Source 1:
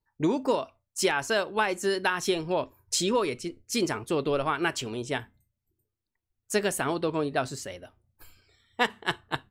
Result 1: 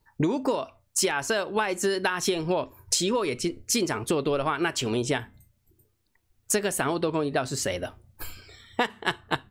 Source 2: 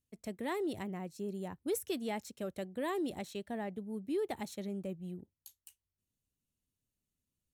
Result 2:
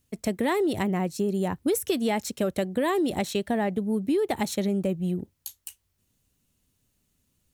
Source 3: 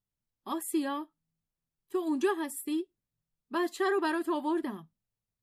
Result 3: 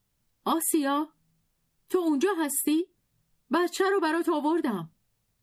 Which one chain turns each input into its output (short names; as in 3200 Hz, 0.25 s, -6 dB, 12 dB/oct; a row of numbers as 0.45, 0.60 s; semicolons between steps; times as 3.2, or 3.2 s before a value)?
compressor 6:1, threshold -38 dBFS; match loudness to -27 LUFS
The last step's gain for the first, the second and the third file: +14.5, +16.0, +15.0 dB